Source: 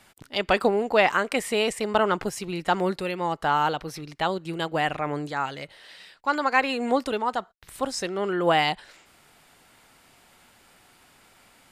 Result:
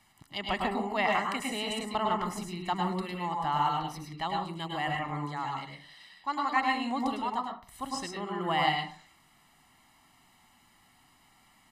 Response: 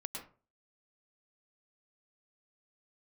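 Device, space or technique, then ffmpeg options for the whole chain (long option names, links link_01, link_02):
microphone above a desk: -filter_complex "[0:a]aecho=1:1:1:0.72[link_01];[1:a]atrim=start_sample=2205[link_02];[link_01][link_02]afir=irnorm=-1:irlink=0,volume=-6.5dB"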